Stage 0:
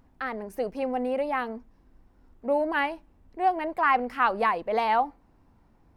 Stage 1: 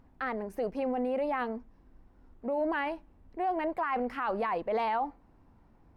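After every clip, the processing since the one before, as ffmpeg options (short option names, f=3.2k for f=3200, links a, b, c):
-af "highshelf=f=4.2k:g=-8.5,alimiter=limit=-23.5dB:level=0:latency=1:release=12"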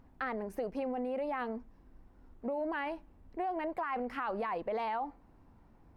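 -af "acompressor=threshold=-32dB:ratio=6"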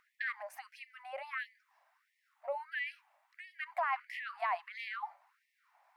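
-af "equalizer=f=2.1k:t=o:w=0.49:g=4.5,afftfilt=real='re*gte(b*sr/1024,550*pow(1800/550,0.5+0.5*sin(2*PI*1.5*pts/sr)))':imag='im*gte(b*sr/1024,550*pow(1800/550,0.5+0.5*sin(2*PI*1.5*pts/sr)))':win_size=1024:overlap=0.75,volume=2.5dB"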